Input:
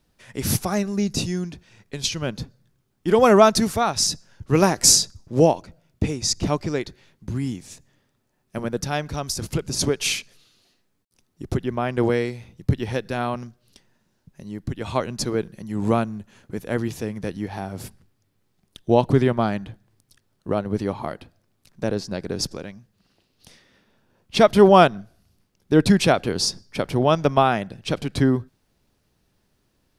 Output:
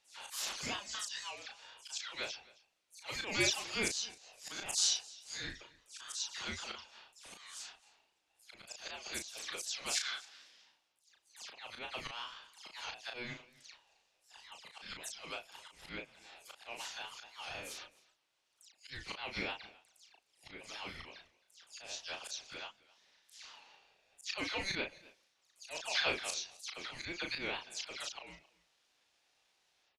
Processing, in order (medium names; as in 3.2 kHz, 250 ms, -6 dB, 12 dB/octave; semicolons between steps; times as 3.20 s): delay that grows with frequency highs early, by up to 151 ms; high-pass 1.5 kHz 24 dB/octave; distance through air 74 m; slow attack 235 ms; in parallel at +3 dB: compression, threshold -45 dBFS, peak gain reduction 20 dB; on the sum: ring modulator 960 Hz; doubling 35 ms -5 dB; on a send: delay 265 ms -22.5 dB; on the sum: warped record 78 rpm, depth 100 cents; trim -2.5 dB